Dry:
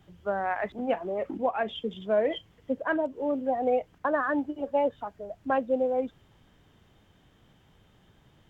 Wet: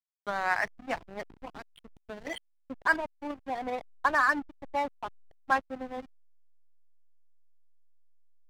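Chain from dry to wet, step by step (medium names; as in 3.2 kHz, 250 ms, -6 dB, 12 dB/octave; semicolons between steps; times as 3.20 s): ten-band graphic EQ 125 Hz -8 dB, 500 Hz -9 dB, 1 kHz +8 dB, 2 kHz +12 dB; 1.31–2.27 s: compression 16:1, threshold -31 dBFS, peak gain reduction 13.5 dB; hysteresis with a dead band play -25.5 dBFS; trim -3.5 dB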